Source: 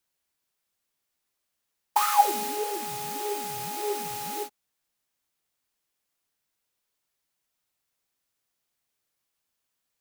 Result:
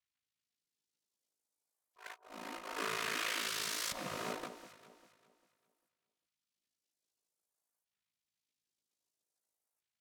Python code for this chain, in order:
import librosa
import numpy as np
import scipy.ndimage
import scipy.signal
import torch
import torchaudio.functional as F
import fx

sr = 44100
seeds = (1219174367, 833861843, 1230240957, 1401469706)

p1 = x * np.sin(2.0 * np.pi * 27.0 * np.arange(len(x)) / sr)
p2 = fx.filter_lfo_bandpass(p1, sr, shape='saw_up', hz=0.51, low_hz=500.0, high_hz=3300.0, q=1.1)
p3 = fx.over_compress(p2, sr, threshold_db=-41.0, ratio=-0.5)
p4 = fx.spec_gate(p3, sr, threshold_db=-15, keep='weak')
p5 = p4 + fx.echo_alternate(p4, sr, ms=199, hz=1100.0, feedback_pct=54, wet_db=-9.5, dry=0)
y = p5 * 10.0 ** (8.0 / 20.0)